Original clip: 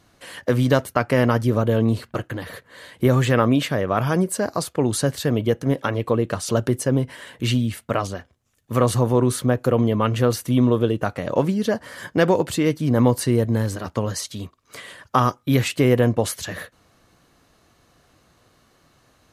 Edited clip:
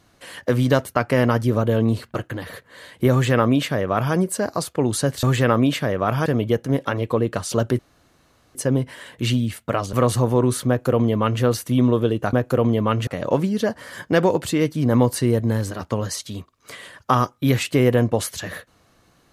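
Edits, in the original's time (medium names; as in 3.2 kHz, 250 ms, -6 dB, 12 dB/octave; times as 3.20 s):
3.12–4.15 s: copy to 5.23 s
6.76 s: insert room tone 0.76 s
8.14–8.72 s: delete
9.47–10.21 s: copy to 11.12 s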